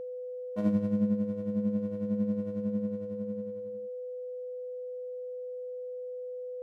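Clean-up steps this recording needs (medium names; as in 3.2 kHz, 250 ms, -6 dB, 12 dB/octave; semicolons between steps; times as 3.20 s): band-stop 500 Hz, Q 30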